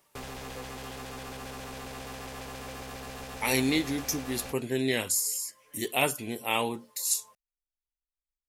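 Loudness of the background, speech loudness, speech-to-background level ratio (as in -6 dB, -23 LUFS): -41.0 LUFS, -29.0 LUFS, 12.0 dB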